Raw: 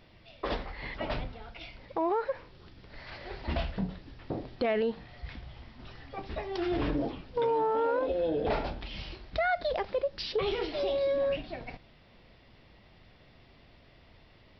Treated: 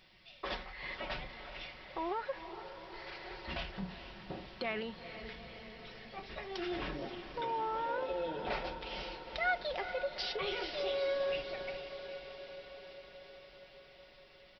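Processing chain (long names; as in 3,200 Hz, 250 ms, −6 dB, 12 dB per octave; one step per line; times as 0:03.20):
tilt shelving filter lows −6.5 dB, about 1,100 Hz
comb filter 5.4 ms, depth 46%
dynamic equaliser 4,400 Hz, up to −3 dB, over −50 dBFS, Q 1.6
on a send: feedback delay with all-pass diffusion 452 ms, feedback 70%, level −10 dB
on the sum: level −5.5 dB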